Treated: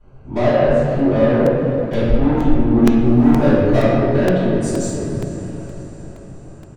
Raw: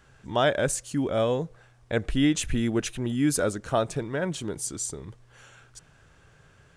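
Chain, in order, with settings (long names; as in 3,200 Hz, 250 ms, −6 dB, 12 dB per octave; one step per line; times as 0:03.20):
adaptive Wiener filter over 25 samples
treble cut that deepens with the level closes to 920 Hz, closed at −21 dBFS
0:03.03–0:03.79: leveller curve on the samples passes 1
soft clipping −26 dBFS, distortion −9 dB
double-tracking delay 22 ms −10.5 dB
feedback delay with all-pass diffusion 457 ms, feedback 56%, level −14 dB
convolution reverb RT60 2.3 s, pre-delay 3 ms, DRR −19.5 dB
regular buffer underruns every 0.47 s, samples 128, repeat, from 0:00.99
level −5 dB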